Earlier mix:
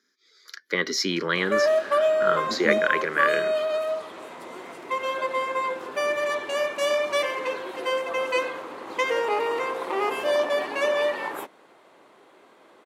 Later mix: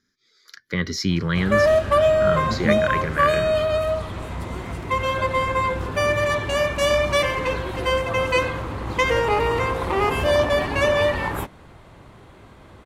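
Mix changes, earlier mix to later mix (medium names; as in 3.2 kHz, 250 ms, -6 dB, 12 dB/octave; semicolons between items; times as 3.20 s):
speech -7.5 dB; master: remove ladder high-pass 270 Hz, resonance 20%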